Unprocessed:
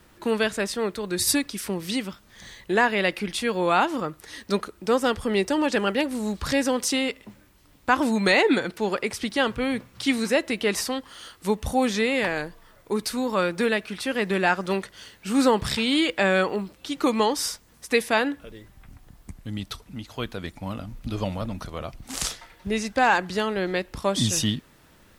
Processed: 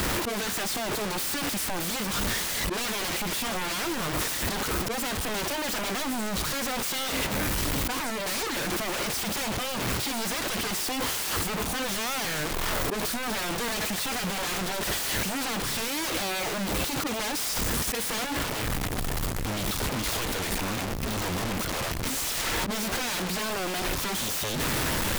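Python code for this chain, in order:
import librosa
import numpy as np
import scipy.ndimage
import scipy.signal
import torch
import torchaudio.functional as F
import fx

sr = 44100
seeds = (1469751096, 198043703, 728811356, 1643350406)

y = fx.power_curve(x, sr, exponent=0.35)
y = fx.auto_swell(y, sr, attack_ms=101.0)
y = 10.0 ** (-25.0 / 20.0) * (np.abs((y / 10.0 ** (-25.0 / 20.0) + 3.0) % 4.0 - 2.0) - 1.0)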